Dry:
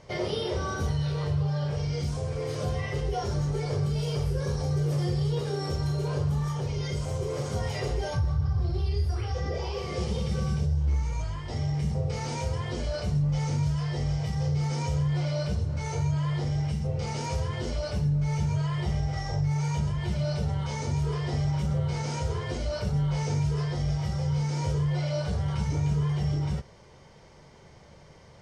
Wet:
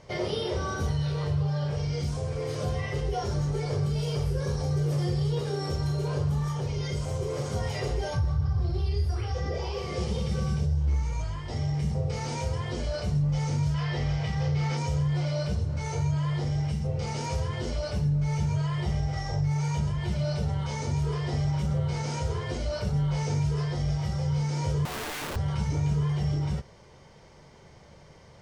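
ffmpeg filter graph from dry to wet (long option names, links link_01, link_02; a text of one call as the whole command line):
ffmpeg -i in.wav -filter_complex "[0:a]asettb=1/sr,asplit=3[link_01][link_02][link_03];[link_01]atrim=end=13.744[link_04];[link_02]atrim=start=13.74:end=14.77,asetpts=PTS-STARTPTS,afade=type=in:duration=0.004:curve=qsin,afade=type=out:start_time=1.026:duration=0.004:curve=qsin,lowpass=frequency=3200:poles=1,equalizer=frequency=2500:width=0.46:gain=8.5[link_05];[link_03]atrim=start=14.766[link_06];[link_04][link_05]acrossfade=duration=0.004:curve1=hsin:curve2=qsin[link_07];[link_07][link_06]acrossfade=duration=0.004:curve1=qsin:curve2=hsin,asettb=1/sr,asplit=3[link_08][link_09][link_10];[link_08]atrim=end=24.854[link_11];[link_09]atrim=start=24.85:end=25.36,asetpts=PTS-STARTPTS,afade=type=in:duration=0.004:curve=qsin,afade=type=out:start_time=0.506:duration=0.004:curve=qsin,lowpass=frequency=1900:width=0.5412,lowpass=frequency=1900:width=1.3066,lowshelf=frequency=130:gain=-4,aeval=exprs='(mod(31.6*val(0)+1,2)-1)/31.6':channel_layout=same[link_12];[link_10]atrim=start=25.356[link_13];[link_11][link_12]acrossfade=duration=0.004:curve1=hsin:curve2=qsin[link_14];[link_14][link_13]acrossfade=duration=0.004:curve1=qsin:curve2=hsin" out.wav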